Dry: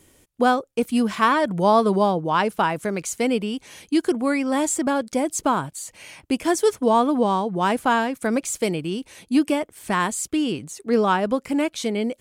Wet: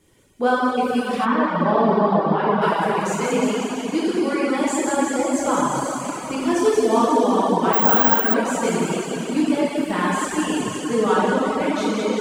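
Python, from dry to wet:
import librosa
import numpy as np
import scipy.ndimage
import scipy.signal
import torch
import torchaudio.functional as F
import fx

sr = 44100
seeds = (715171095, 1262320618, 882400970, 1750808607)

y = fx.high_shelf(x, sr, hz=8200.0, db=-10.0)
y = fx.echo_wet_highpass(y, sr, ms=180, feedback_pct=63, hz=3700.0, wet_db=-4.0)
y = fx.rev_plate(y, sr, seeds[0], rt60_s=4.4, hf_ratio=0.8, predelay_ms=0, drr_db=-9.5)
y = fx.dereverb_blind(y, sr, rt60_s=0.78)
y = fx.spacing_loss(y, sr, db_at_10k=24, at=(1.24, 2.61), fade=0.02)
y = fx.resample_bad(y, sr, factor=2, down='none', up='zero_stuff', at=(7.73, 8.34))
y = F.gain(torch.from_numpy(y), -5.5).numpy()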